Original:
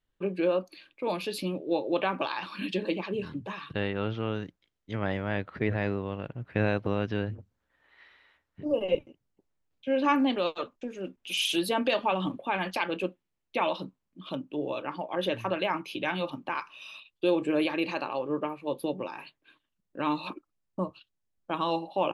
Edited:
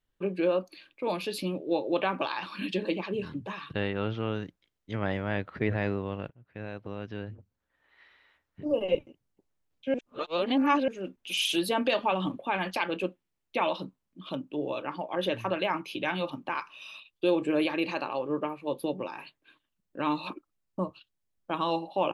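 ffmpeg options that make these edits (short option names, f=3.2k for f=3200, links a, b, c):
-filter_complex "[0:a]asplit=4[a][b][c][d];[a]atrim=end=6.3,asetpts=PTS-STARTPTS,afade=t=out:st=6.296:d=0.004:c=hsin:silence=0.0891251[e];[b]atrim=start=6.3:end=9.942,asetpts=PTS-STARTPTS,afade=t=in:d=2.4:silence=0.0891251[f];[c]atrim=start=9.938:end=10.882,asetpts=PTS-STARTPTS,areverse[g];[d]atrim=start=10.878[h];[e][f]concat=n=2:v=0:a=1[i];[i][g]acrossfade=d=0.004:c1=hsin:c2=hsin[j];[j][h]acrossfade=d=0.004:c1=hsin:c2=hsin"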